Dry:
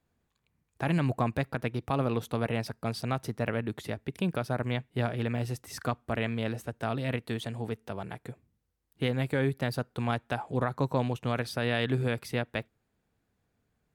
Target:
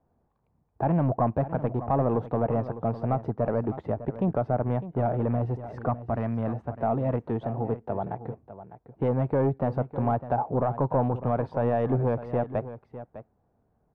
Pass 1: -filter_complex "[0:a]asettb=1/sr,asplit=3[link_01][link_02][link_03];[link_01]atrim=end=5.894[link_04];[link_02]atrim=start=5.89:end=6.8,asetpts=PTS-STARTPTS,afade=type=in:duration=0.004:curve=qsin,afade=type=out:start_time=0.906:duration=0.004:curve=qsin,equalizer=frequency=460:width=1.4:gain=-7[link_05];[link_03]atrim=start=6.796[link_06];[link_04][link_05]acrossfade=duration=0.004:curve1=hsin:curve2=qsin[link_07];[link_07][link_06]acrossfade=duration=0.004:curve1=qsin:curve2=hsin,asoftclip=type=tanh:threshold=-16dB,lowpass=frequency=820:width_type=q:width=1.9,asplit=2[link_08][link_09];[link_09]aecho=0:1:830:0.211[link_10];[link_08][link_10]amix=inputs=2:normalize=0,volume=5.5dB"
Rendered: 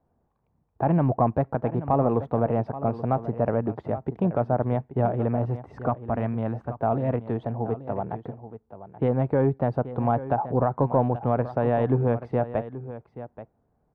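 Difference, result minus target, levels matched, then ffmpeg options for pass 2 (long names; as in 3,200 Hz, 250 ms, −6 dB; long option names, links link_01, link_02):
echo 226 ms late; soft clipping: distortion −11 dB
-filter_complex "[0:a]asettb=1/sr,asplit=3[link_01][link_02][link_03];[link_01]atrim=end=5.894[link_04];[link_02]atrim=start=5.89:end=6.8,asetpts=PTS-STARTPTS,afade=type=in:duration=0.004:curve=qsin,afade=type=out:start_time=0.906:duration=0.004:curve=qsin,equalizer=frequency=460:width=1.4:gain=-7[link_05];[link_03]atrim=start=6.796[link_06];[link_04][link_05]acrossfade=duration=0.004:curve1=hsin:curve2=qsin[link_07];[link_07][link_06]acrossfade=duration=0.004:curve1=qsin:curve2=hsin,asoftclip=type=tanh:threshold=-24.5dB,lowpass=frequency=820:width_type=q:width=1.9,asplit=2[link_08][link_09];[link_09]aecho=0:1:604:0.211[link_10];[link_08][link_10]amix=inputs=2:normalize=0,volume=5.5dB"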